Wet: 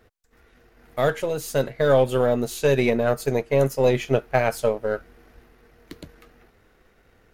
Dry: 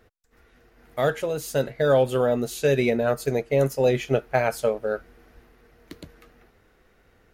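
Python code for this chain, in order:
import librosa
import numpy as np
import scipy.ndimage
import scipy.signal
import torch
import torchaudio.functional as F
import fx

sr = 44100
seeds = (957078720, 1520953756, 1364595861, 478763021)

y = np.where(x < 0.0, 10.0 ** (-3.0 / 20.0) * x, x)
y = y * librosa.db_to_amplitude(2.5)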